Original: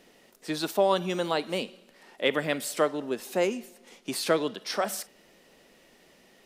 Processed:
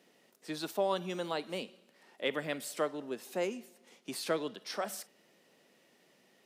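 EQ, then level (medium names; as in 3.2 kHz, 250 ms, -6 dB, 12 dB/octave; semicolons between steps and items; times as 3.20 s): high-pass 110 Hz 24 dB/octave; -8.0 dB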